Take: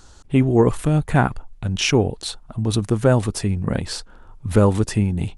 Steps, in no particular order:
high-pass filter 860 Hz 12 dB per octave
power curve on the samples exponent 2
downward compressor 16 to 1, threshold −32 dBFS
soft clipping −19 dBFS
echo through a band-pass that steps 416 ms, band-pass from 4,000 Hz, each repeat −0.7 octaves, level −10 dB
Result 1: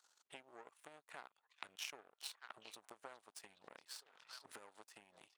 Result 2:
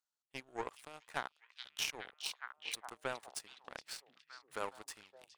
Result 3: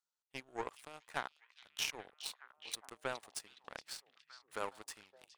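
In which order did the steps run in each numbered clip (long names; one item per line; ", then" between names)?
echo through a band-pass that steps, then downward compressor, then power curve on the samples, then soft clipping, then high-pass filter
high-pass filter, then power curve on the samples, then echo through a band-pass that steps, then downward compressor, then soft clipping
high-pass filter, then power curve on the samples, then downward compressor, then soft clipping, then echo through a band-pass that steps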